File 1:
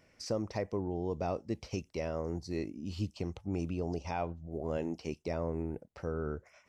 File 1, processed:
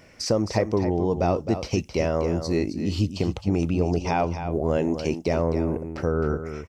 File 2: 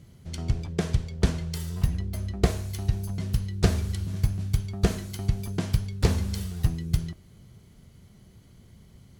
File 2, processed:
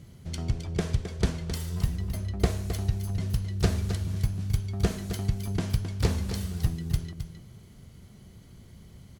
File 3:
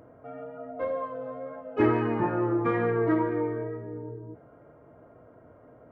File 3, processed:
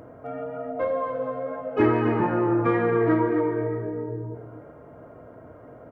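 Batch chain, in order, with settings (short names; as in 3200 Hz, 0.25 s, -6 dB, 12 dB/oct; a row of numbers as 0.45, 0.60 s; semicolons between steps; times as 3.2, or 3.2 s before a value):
in parallel at +1 dB: compressor, threshold -34 dBFS; on the sum: echo 0.264 s -9.5 dB; normalise peaks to -9 dBFS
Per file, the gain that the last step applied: +7.0, -4.5, +1.0 dB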